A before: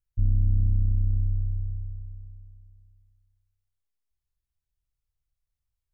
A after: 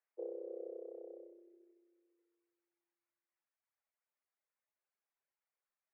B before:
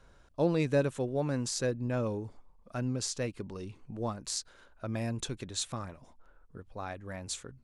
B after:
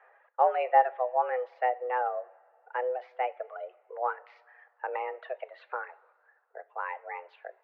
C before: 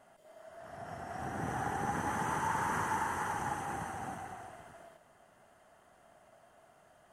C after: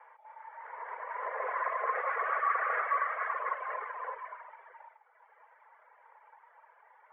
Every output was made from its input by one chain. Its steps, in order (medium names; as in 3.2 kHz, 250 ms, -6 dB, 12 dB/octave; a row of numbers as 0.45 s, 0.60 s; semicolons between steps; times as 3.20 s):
reverb removal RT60 1.4 s; mistuned SSB +250 Hz 240–2100 Hz; two-slope reverb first 0.3 s, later 2.2 s, from -19 dB, DRR 13 dB; trim +6 dB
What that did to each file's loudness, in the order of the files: -20.5 LU, +3.0 LU, +3.5 LU